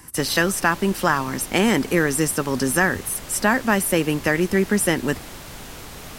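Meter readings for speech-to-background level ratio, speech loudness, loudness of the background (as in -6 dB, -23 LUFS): 16.5 dB, -20.5 LUFS, -37.0 LUFS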